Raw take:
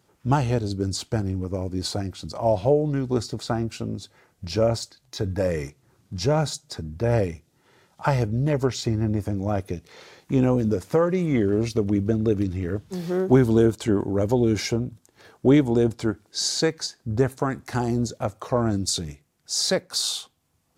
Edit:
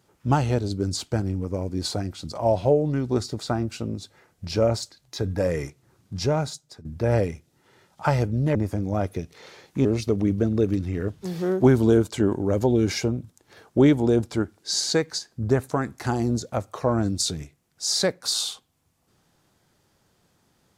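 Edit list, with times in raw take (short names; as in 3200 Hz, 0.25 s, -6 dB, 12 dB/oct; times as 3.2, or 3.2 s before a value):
6.18–6.85 fade out, to -15.5 dB
8.55–9.09 cut
10.39–11.53 cut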